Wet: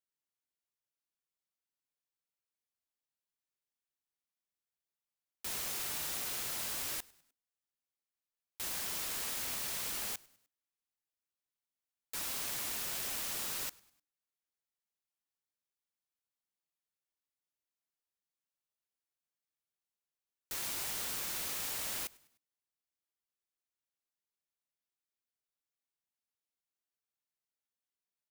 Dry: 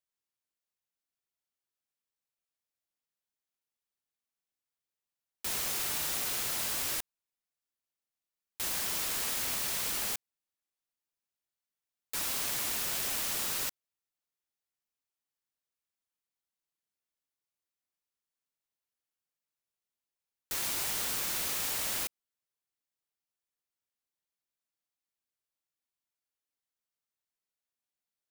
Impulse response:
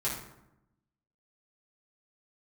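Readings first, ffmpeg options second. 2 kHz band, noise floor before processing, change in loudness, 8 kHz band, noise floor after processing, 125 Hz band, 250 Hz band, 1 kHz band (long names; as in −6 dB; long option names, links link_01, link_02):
−5.0 dB, below −85 dBFS, −5.0 dB, −5.0 dB, below −85 dBFS, −5.0 dB, −5.0 dB, −5.0 dB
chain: -filter_complex "[0:a]asplit=4[link_01][link_02][link_03][link_04];[link_02]adelay=101,afreqshift=-100,volume=-24dB[link_05];[link_03]adelay=202,afreqshift=-200,volume=-30.7dB[link_06];[link_04]adelay=303,afreqshift=-300,volume=-37.5dB[link_07];[link_01][link_05][link_06][link_07]amix=inputs=4:normalize=0,volume=-5dB"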